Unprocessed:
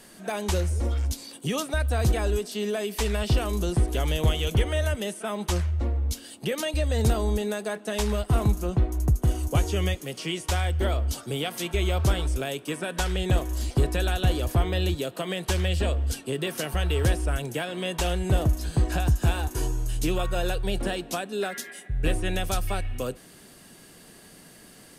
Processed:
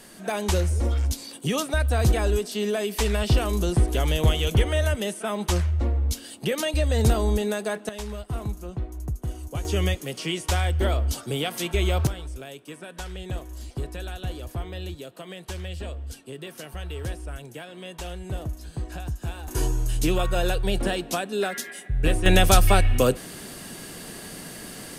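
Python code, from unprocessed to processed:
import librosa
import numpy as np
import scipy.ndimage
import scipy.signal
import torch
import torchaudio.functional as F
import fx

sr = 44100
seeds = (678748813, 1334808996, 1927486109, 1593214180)

y = fx.gain(x, sr, db=fx.steps((0.0, 2.5), (7.89, -8.0), (9.65, 2.0), (12.07, -9.0), (19.48, 3.0), (22.26, 11.0)))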